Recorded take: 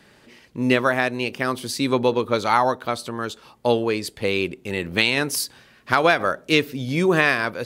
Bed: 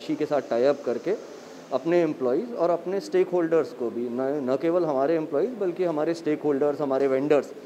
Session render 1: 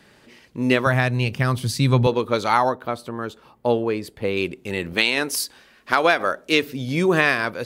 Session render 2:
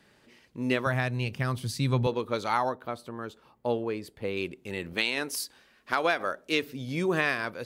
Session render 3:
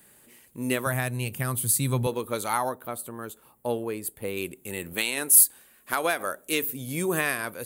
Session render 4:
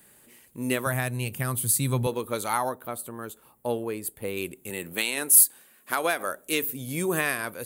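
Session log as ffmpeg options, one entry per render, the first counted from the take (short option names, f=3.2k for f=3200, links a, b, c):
-filter_complex "[0:a]asettb=1/sr,asplit=3[a][b][c];[a]atrim=end=0.864[d];[b]atrim=start=0.86:end=2.07,asetpts=PTS-STARTPTS,afade=t=in:d=0.004:c=qsin,afade=t=out:st=1.206:d=0.004:c=qsin,lowshelf=f=200:t=q:w=1.5:g=12.5[e];[c]atrim=start=2.066[f];[d][e]acrossfade=d=0.004:c1=hsin:c2=qsin[g];[g][f]acrossfade=d=0.004:c1=qsin:c2=hsin,asettb=1/sr,asplit=3[h][i][j];[h]atrim=end=2.694[k];[i]atrim=start=2.69:end=4.37,asetpts=PTS-STARTPTS,afade=t=in:d=0.004:c=qsin,afade=t=out:st=1.676:d=0.004:c=qsin,equalizer=f=6.3k:w=0.4:g=-10.5[l];[j]atrim=start=4.366[m];[k][l]acrossfade=d=0.004:c1=hsin:c2=qsin[n];[n][m]acrossfade=d=0.004:c1=qsin:c2=hsin,asettb=1/sr,asplit=3[o][p][q];[o]atrim=end=4.934[r];[p]atrim=start=4.93:end=6.63,asetpts=PTS-STARTPTS,afade=t=in:d=0.004:c=qsin,afade=t=out:st=1.696:d=0.004:c=qsin,equalizer=f=120:w=1.5:g=-12.5[s];[q]atrim=start=6.626[t];[r][s]acrossfade=d=0.004:c1=hsin:c2=qsin[u];[u][t]acrossfade=d=0.004:c1=qsin:c2=hsin"
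-af "volume=-8.5dB"
-af "aexciter=amount=15.4:drive=3.2:freq=7.7k,asoftclip=type=tanh:threshold=-5dB"
-filter_complex "[0:a]asettb=1/sr,asplit=3[a][b][c];[a]atrim=end=4.704[d];[b]atrim=start=4.7:end=6.29,asetpts=PTS-STARTPTS,afade=t=in:d=0.004:c=qsin,afade=t=out:st=1.586:d=0.004:c=qsin,highpass=120[e];[c]atrim=start=6.286[f];[d][e]acrossfade=d=0.004:c1=hsin:c2=qsin[g];[g][f]acrossfade=d=0.004:c1=qsin:c2=hsin"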